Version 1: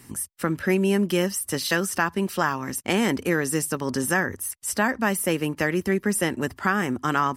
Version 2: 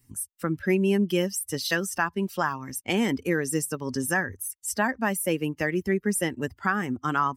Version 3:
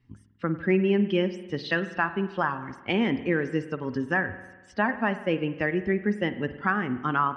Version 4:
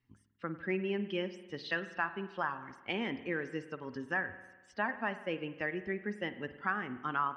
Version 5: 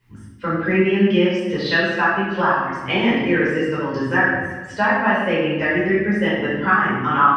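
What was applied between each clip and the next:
expander on every frequency bin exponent 1.5
low-pass 3.5 kHz 24 dB/octave; spring tank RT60 1.2 s, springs 48 ms, chirp 70 ms, DRR 11.5 dB
bass shelf 380 Hz -8.5 dB; trim -7 dB
in parallel at 0 dB: compression, threshold -42 dBFS, peak gain reduction 14.5 dB; on the sum: simulated room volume 610 m³, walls mixed, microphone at 4.9 m; trim +4.5 dB

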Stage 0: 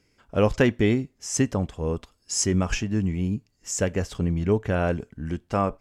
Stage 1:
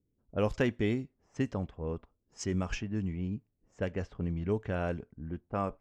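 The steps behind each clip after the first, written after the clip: level-controlled noise filter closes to 320 Hz, open at -17.5 dBFS; trim -9 dB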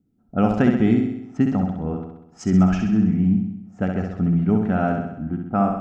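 small resonant body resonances 210/730/1300 Hz, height 17 dB, ringing for 25 ms; on a send: flutter echo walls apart 11.1 m, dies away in 0.81 s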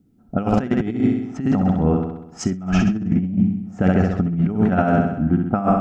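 compressor with a negative ratio -22 dBFS, ratio -0.5; trim +5 dB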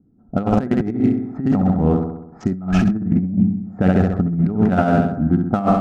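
local Wiener filter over 15 samples; level-controlled noise filter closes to 1.6 kHz, open at -16 dBFS; trim +1.5 dB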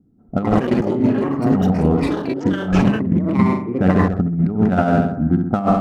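ever faster or slower copies 203 ms, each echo +7 st, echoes 3, each echo -6 dB

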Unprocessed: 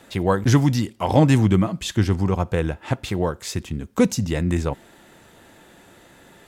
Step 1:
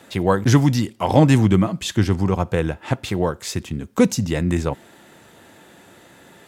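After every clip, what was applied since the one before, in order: high-pass 80 Hz; trim +2 dB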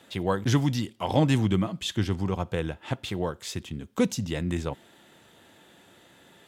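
peaking EQ 3.3 kHz +6.5 dB 0.53 oct; trim -8.5 dB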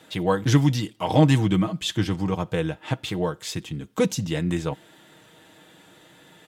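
comb 6.4 ms, depth 53%; trim +2.5 dB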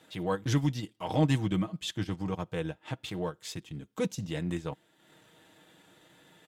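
transient shaper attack -4 dB, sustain -8 dB; trim -7 dB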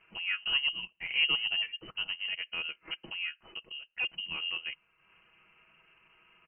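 tracing distortion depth 0.028 ms; frequency inversion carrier 3 kHz; trim -3 dB

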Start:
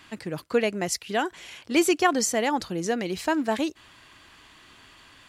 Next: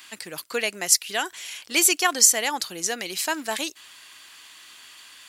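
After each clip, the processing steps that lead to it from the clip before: tilt EQ +4.5 dB/octave; trim -1 dB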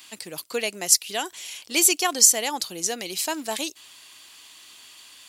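peaking EQ 1.6 kHz -8 dB 1.1 oct; trim +1 dB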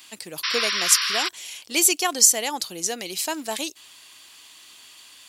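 painted sound noise, 0.43–1.29 s, 990–5800 Hz -25 dBFS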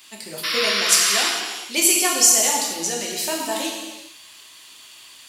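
gated-style reverb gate 480 ms falling, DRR -3 dB; trim -1.5 dB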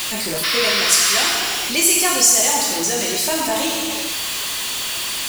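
jump at every zero crossing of -18 dBFS; trim -1 dB

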